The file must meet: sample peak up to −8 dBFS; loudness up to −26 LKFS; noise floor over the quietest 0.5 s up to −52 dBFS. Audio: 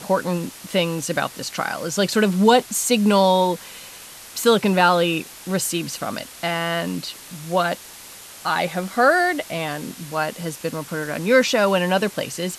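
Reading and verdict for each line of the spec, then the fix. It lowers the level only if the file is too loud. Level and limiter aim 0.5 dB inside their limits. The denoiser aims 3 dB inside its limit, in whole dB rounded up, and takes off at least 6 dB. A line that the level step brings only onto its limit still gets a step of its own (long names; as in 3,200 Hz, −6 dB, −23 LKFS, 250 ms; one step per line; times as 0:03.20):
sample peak −2.5 dBFS: out of spec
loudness −21.0 LKFS: out of spec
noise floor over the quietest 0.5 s −41 dBFS: out of spec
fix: broadband denoise 9 dB, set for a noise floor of −41 dBFS
level −5.5 dB
brickwall limiter −8.5 dBFS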